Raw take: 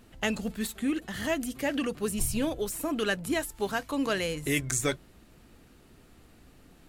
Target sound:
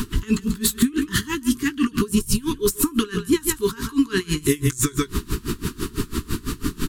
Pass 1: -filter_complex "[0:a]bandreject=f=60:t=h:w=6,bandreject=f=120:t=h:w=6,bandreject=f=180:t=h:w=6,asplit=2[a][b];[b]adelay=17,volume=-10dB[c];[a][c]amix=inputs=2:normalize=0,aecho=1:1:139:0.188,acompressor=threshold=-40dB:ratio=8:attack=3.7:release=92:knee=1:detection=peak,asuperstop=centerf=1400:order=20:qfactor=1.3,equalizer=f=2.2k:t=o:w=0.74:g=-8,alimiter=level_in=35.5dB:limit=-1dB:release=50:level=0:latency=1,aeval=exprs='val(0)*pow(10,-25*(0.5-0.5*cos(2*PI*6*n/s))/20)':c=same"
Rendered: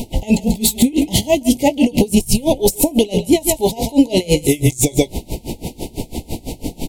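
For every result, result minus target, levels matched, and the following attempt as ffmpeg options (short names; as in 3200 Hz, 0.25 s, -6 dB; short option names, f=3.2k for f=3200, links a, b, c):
compressor: peak gain reduction -7.5 dB; 500 Hz band +2.0 dB
-filter_complex "[0:a]bandreject=f=60:t=h:w=6,bandreject=f=120:t=h:w=6,bandreject=f=180:t=h:w=6,asplit=2[a][b];[b]adelay=17,volume=-10dB[c];[a][c]amix=inputs=2:normalize=0,aecho=1:1:139:0.188,acompressor=threshold=-48.5dB:ratio=8:attack=3.7:release=92:knee=1:detection=peak,asuperstop=centerf=1400:order=20:qfactor=1.3,equalizer=f=2.2k:t=o:w=0.74:g=-8,alimiter=level_in=35.5dB:limit=-1dB:release=50:level=0:latency=1,aeval=exprs='val(0)*pow(10,-25*(0.5-0.5*cos(2*PI*6*n/s))/20)':c=same"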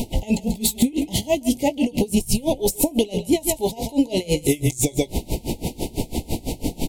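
500 Hz band +3.0 dB
-filter_complex "[0:a]bandreject=f=60:t=h:w=6,bandreject=f=120:t=h:w=6,bandreject=f=180:t=h:w=6,asplit=2[a][b];[b]adelay=17,volume=-10dB[c];[a][c]amix=inputs=2:normalize=0,aecho=1:1:139:0.188,acompressor=threshold=-48.5dB:ratio=8:attack=3.7:release=92:knee=1:detection=peak,asuperstop=centerf=640:order=20:qfactor=1.3,equalizer=f=2.2k:t=o:w=0.74:g=-8,alimiter=level_in=35.5dB:limit=-1dB:release=50:level=0:latency=1,aeval=exprs='val(0)*pow(10,-25*(0.5-0.5*cos(2*PI*6*n/s))/20)':c=same"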